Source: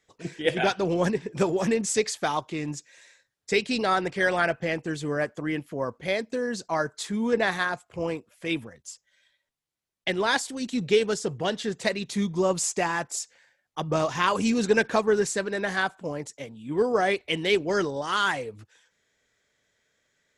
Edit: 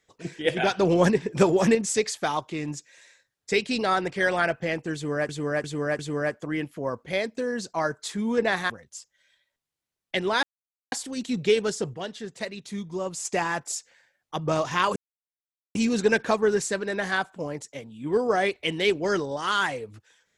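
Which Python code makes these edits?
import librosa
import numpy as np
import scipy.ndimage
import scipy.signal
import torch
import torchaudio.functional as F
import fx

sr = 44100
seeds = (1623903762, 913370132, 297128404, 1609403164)

y = fx.edit(x, sr, fx.clip_gain(start_s=0.74, length_s=1.01, db=4.5),
    fx.repeat(start_s=4.94, length_s=0.35, count=4),
    fx.cut(start_s=7.65, length_s=0.98),
    fx.insert_silence(at_s=10.36, length_s=0.49),
    fx.clip_gain(start_s=11.38, length_s=1.31, db=-7.0),
    fx.insert_silence(at_s=14.4, length_s=0.79), tone=tone)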